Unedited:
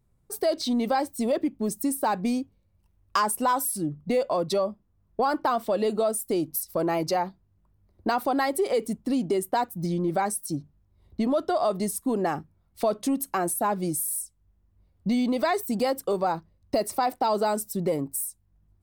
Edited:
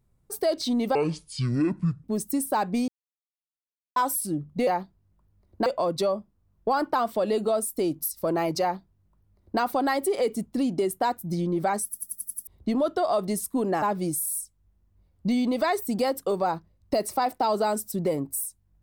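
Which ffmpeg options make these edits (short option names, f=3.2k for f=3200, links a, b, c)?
-filter_complex "[0:a]asplit=15[a][b][c][d][e][f][g][h][i][j][k][l][m][n][o];[a]atrim=end=0.954[p];[b]atrim=start=0.95:end=1.55,asetpts=PTS-STARTPTS,asetrate=24255,aresample=44100,atrim=end_sample=48109,asetpts=PTS-STARTPTS[q];[c]atrim=start=1.546:end=2.39,asetpts=PTS-STARTPTS,afade=t=out:st=0.84:d=0.004:c=hsin[r];[d]atrim=start=2.39:end=3.47,asetpts=PTS-STARTPTS,volume=0[s];[e]atrim=start=3.47:end=4.182,asetpts=PTS-STARTPTS,afade=t=in:d=0.004:c=hsin[t];[f]atrim=start=7.128:end=8.122[u];[g]atrim=start=4.178:end=10.452[v];[h]atrim=start=10.358:end=10.452[w];[i]atrim=start=10.358:end=10.452[x];[j]atrim=start=10.358:end=10.452[y];[k]atrim=start=10.358:end=10.452[z];[l]atrim=start=10.358:end=10.452[aa];[m]atrim=start=10.358:end=10.452[ab];[n]atrim=start=10.988:end=12.342[ac];[o]atrim=start=13.628[ad];[p][q]acrossfade=d=0.004:c1=hsin:c2=hsin[ae];[r][s][t]concat=n=3:v=0:a=1[af];[ae][af]acrossfade=d=0.004:c1=hsin:c2=hsin[ag];[ag][u]acrossfade=d=0.004:c1=hsin:c2=hsin[ah];[ah][v]acrossfade=d=0.004:c1=hsin:c2=hsin[ai];[ai][w]acrossfade=d=0.004:c1=hsin:c2=hsin[aj];[aj][x]acrossfade=d=0.004:c1=hsin:c2=hsin[ak];[ak][y]acrossfade=d=0.004:c1=hsin:c2=hsin[al];[al][z]acrossfade=d=0.004:c1=hsin:c2=hsin[am];[am][aa]acrossfade=d=0.004:c1=hsin:c2=hsin[an];[an][ab]acrossfade=d=0.004:c1=hsin:c2=hsin[ao];[ao][ac]acrossfade=d=0.004:c1=hsin:c2=hsin[ap];[ap][ad]acrossfade=d=0.004:c1=hsin:c2=hsin"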